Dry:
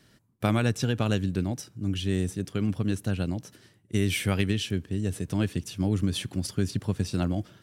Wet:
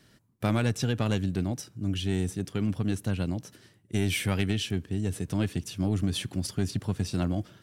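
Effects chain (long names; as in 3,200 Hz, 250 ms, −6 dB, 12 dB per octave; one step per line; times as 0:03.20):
soft clipping −16.5 dBFS, distortion −19 dB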